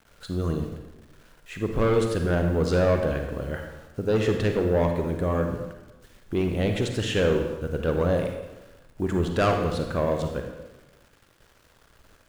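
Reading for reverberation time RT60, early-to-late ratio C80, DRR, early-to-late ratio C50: 1.1 s, 7.0 dB, 4.0 dB, 5.0 dB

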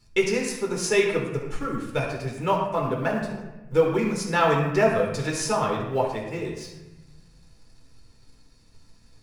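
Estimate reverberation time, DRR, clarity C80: 1.1 s, −1.0 dB, 6.0 dB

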